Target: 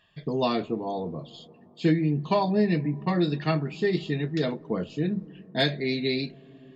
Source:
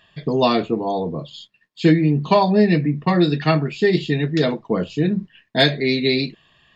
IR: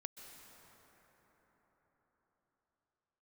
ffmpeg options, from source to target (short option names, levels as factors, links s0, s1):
-filter_complex "[0:a]asplit=2[s0][s1];[s1]equalizer=f=3100:w=0.3:g=-15[s2];[1:a]atrim=start_sample=2205,lowpass=2600[s3];[s2][s3]afir=irnorm=-1:irlink=0,volume=0.398[s4];[s0][s4]amix=inputs=2:normalize=0,volume=0.355"